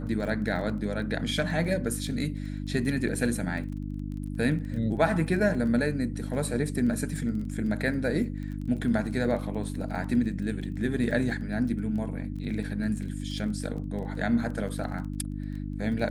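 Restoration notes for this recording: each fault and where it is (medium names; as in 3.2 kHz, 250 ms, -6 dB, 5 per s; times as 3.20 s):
crackle 19 per s -36 dBFS
hum 50 Hz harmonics 6 -34 dBFS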